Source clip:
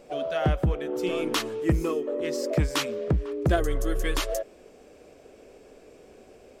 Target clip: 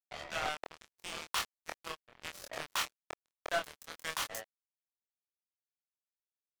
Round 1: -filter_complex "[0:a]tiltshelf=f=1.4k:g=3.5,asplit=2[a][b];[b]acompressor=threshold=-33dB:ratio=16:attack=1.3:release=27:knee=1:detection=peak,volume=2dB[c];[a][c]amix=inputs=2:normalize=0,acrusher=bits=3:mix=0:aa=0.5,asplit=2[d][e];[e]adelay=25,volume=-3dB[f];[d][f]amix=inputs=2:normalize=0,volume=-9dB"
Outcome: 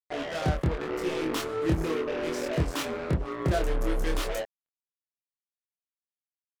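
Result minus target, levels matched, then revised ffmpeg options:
1000 Hz band -4.5 dB
-filter_complex "[0:a]highpass=f=800:w=0.5412,highpass=f=800:w=1.3066,tiltshelf=f=1.4k:g=3.5,asplit=2[a][b];[b]acompressor=threshold=-33dB:ratio=16:attack=1.3:release=27:knee=1:detection=peak,volume=2dB[c];[a][c]amix=inputs=2:normalize=0,acrusher=bits=3:mix=0:aa=0.5,asplit=2[d][e];[e]adelay=25,volume=-3dB[f];[d][f]amix=inputs=2:normalize=0,volume=-9dB"

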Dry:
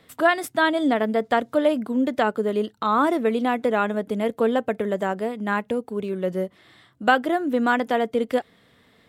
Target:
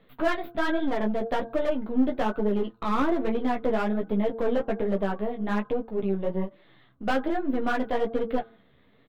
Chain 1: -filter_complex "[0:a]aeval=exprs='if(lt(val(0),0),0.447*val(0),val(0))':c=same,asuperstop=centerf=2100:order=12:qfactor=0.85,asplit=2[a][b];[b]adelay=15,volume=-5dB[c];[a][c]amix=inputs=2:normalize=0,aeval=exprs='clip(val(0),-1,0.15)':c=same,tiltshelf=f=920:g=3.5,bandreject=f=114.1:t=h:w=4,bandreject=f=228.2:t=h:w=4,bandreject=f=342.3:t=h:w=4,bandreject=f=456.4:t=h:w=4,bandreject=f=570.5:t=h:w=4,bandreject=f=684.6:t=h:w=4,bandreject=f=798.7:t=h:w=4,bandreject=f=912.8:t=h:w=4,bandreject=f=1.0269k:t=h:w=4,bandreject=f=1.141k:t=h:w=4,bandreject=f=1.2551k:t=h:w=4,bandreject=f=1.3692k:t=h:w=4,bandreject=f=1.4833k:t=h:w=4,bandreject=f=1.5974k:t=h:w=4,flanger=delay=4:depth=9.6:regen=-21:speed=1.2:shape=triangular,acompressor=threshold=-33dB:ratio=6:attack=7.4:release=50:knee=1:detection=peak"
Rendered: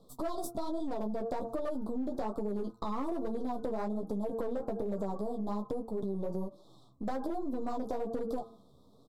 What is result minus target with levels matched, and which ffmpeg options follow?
compressor: peak gain reduction +14.5 dB; 2000 Hz band -12.5 dB
-filter_complex "[0:a]aeval=exprs='if(lt(val(0),0),0.447*val(0),val(0))':c=same,asuperstop=centerf=8100:order=12:qfactor=0.85,asplit=2[a][b];[b]adelay=15,volume=-5dB[c];[a][c]amix=inputs=2:normalize=0,aeval=exprs='clip(val(0),-1,0.15)':c=same,tiltshelf=f=920:g=3.5,bandreject=f=114.1:t=h:w=4,bandreject=f=228.2:t=h:w=4,bandreject=f=342.3:t=h:w=4,bandreject=f=456.4:t=h:w=4,bandreject=f=570.5:t=h:w=4,bandreject=f=684.6:t=h:w=4,bandreject=f=798.7:t=h:w=4,bandreject=f=912.8:t=h:w=4,bandreject=f=1.0269k:t=h:w=4,bandreject=f=1.141k:t=h:w=4,bandreject=f=1.2551k:t=h:w=4,bandreject=f=1.3692k:t=h:w=4,bandreject=f=1.4833k:t=h:w=4,bandreject=f=1.5974k:t=h:w=4,flanger=delay=4:depth=9.6:regen=-21:speed=1.2:shape=triangular"

